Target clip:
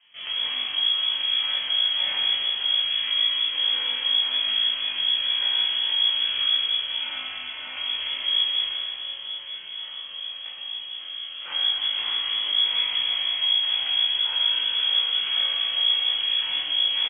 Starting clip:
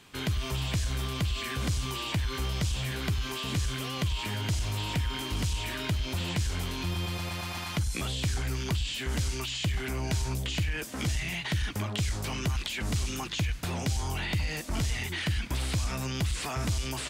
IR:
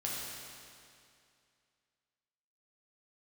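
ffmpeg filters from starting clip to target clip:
-filter_complex "[0:a]asettb=1/sr,asplit=3[s0][s1][s2];[s0]atrim=end=8.674[s3];[s1]atrim=start=8.67:end=11.42,asetpts=PTS-STARTPTS,afade=t=in:d=0.004:c=qsin,afade=t=out:st=2.746:d=0.004:c=qsin,acrossover=split=210|670|1400[s4][s5][s6][s7];[s4]acompressor=threshold=0.00891:ratio=4[s8];[s5]acompressor=threshold=0.00355:ratio=4[s9];[s6]acompressor=threshold=0.00178:ratio=4[s10];[s7]acompressor=threshold=0.00316:ratio=4[s11];[s8][s9][s10][s11]amix=inputs=4:normalize=0[s12];[s2]atrim=start=11.416[s13];[s3][s12]acrossfade=d=0.004:c1=hsin:c2=qsin[s14];[s14][s13]acrossfade=d=0.004:c1=qsin:c2=hsin,acrossover=split=550[s15][s16];[s15]aeval=exprs='val(0)*(1-0.5/2+0.5/2*cos(2*PI*1.2*n/s))':c=same[s17];[s16]aeval=exprs='val(0)*(1-0.5/2-0.5/2*cos(2*PI*1.2*n/s))':c=same[s18];[s17][s18]amix=inputs=2:normalize=0,acrusher=samples=14:mix=1:aa=0.000001:lfo=1:lforange=8.4:lforate=1.8,asplit=2[s19][s20];[s20]adelay=20,volume=0.562[s21];[s19][s21]amix=inputs=2:normalize=0[s22];[1:a]atrim=start_sample=2205,asetrate=37044,aresample=44100[s23];[s22][s23]afir=irnorm=-1:irlink=0,lowpass=f=2900:t=q:w=0.5098,lowpass=f=2900:t=q:w=0.6013,lowpass=f=2900:t=q:w=0.9,lowpass=f=2900:t=q:w=2.563,afreqshift=-3400,volume=0.841"

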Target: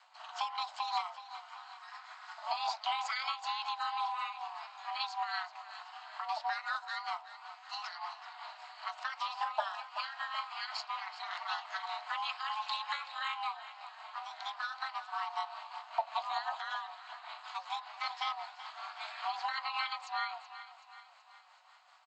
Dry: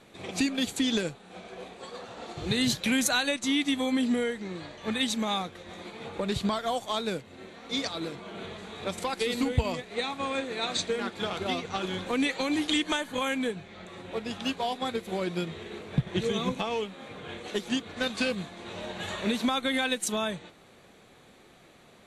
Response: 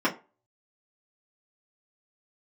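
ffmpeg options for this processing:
-filter_complex "[0:a]equalizer=f=63:w=2.4:g=-12.5,acrossover=split=4500[s0][s1];[s1]acompressor=threshold=0.00112:ratio=6[s2];[s0][s2]amix=inputs=2:normalize=0,afreqshift=180,aresample=16000,aresample=44100,afreqshift=470,aeval=exprs='val(0)*sin(2*PI*110*n/s)':c=same,aecho=1:1:378|756|1134|1512|1890:0.2|0.102|0.0519|0.0265|0.0135,asplit=2[s3][s4];[1:a]atrim=start_sample=2205,asetrate=32193,aresample=44100[s5];[s4][s5]afir=irnorm=-1:irlink=0,volume=0.0631[s6];[s3][s6]amix=inputs=2:normalize=0,tremolo=f=5.2:d=0.45,volume=0.631"

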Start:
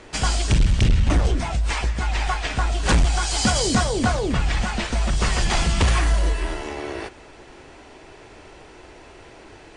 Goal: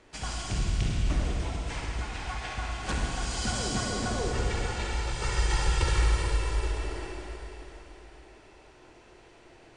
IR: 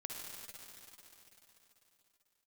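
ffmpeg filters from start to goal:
-filter_complex "[0:a]asettb=1/sr,asplit=3[s0][s1][s2];[s0]atrim=end=4.164[s3];[s1]atrim=start=4.16:end=6.67,asetpts=PTS-STARTPTS,afade=t=in:d=0.004:c=qsin,afade=t=out:st=2.506:d=0.004:c=qsin,aecho=1:1:2.2:0.89,atrim=end_sample=110691[s4];[s2]atrim=start=6.666[s5];[s3][s4]acrossfade=d=0.004:c1=hsin:c2=qsin[s6];[s6][s5]acrossfade=d=0.004:c1=qsin:c2=hsin[s7];[1:a]atrim=start_sample=2205[s8];[s7][s8]afir=irnorm=-1:irlink=0,volume=0.376"

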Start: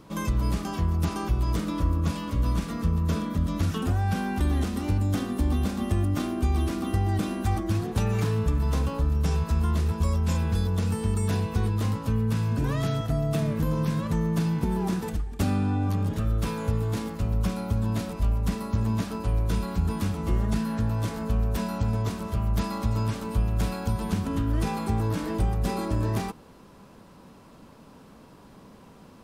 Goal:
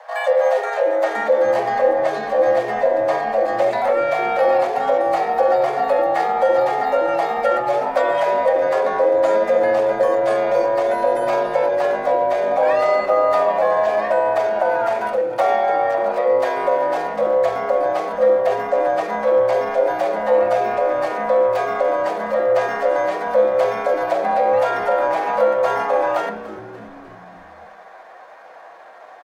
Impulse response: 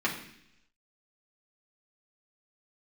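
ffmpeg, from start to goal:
-filter_complex "[0:a]lowpass=f=1900:p=1,asetrate=52444,aresample=44100,atempo=0.840896,afreqshift=450,asplit=6[s0][s1][s2][s3][s4][s5];[s1]adelay=293,afreqshift=-100,volume=0.168[s6];[s2]adelay=586,afreqshift=-200,volume=0.0944[s7];[s3]adelay=879,afreqshift=-300,volume=0.0525[s8];[s4]adelay=1172,afreqshift=-400,volume=0.0295[s9];[s5]adelay=1465,afreqshift=-500,volume=0.0166[s10];[s0][s6][s7][s8][s9][s10]amix=inputs=6:normalize=0,asplit=2[s11][s12];[1:a]atrim=start_sample=2205,lowpass=8700[s13];[s12][s13]afir=irnorm=-1:irlink=0,volume=0.282[s14];[s11][s14]amix=inputs=2:normalize=0,volume=1.78"

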